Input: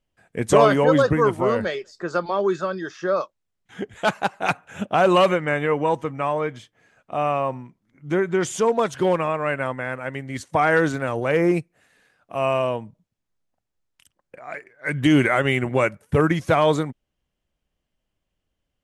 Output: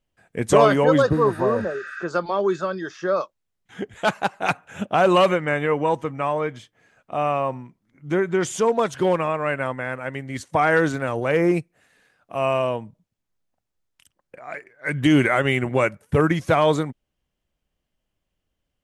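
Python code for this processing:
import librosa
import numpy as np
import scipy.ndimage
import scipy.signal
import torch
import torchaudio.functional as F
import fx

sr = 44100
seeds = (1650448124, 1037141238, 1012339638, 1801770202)

y = fx.spec_repair(x, sr, seeds[0], start_s=1.14, length_s=0.88, low_hz=1200.0, high_hz=8000.0, source='both')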